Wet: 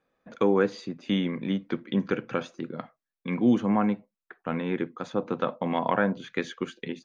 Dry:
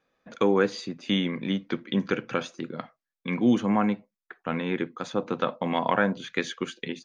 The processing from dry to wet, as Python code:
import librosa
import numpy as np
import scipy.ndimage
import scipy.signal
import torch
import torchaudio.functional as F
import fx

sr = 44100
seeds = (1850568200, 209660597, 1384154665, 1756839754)

y = fx.high_shelf(x, sr, hz=2200.0, db=-8.0)